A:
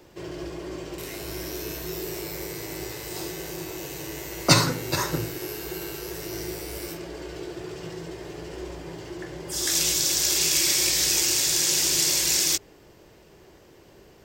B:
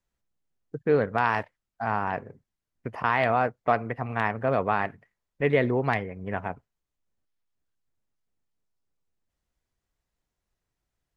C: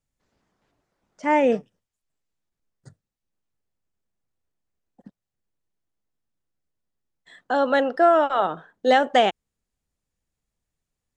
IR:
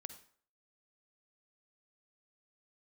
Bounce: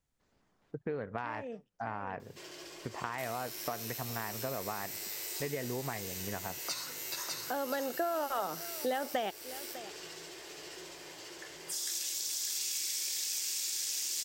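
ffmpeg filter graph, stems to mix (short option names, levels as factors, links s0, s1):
-filter_complex "[0:a]acompressor=threshold=0.0316:ratio=2.5,highpass=f=870:p=1,highshelf=f=2400:g=9,adelay=2200,volume=0.398,asplit=2[s0][s1];[s1]volume=0.631[s2];[1:a]acompressor=threshold=0.0708:ratio=6,volume=0.668,asplit=2[s3][s4];[2:a]acompressor=threshold=0.126:ratio=6,volume=0.841,asplit=2[s5][s6];[s6]volume=0.075[s7];[s4]apad=whole_len=492578[s8];[s5][s8]sidechaincompress=threshold=0.00708:ratio=4:attack=16:release=1260[s9];[s2][s7]amix=inputs=2:normalize=0,aecho=0:1:601:1[s10];[s0][s3][s9][s10]amix=inputs=4:normalize=0,acompressor=threshold=0.0126:ratio=2"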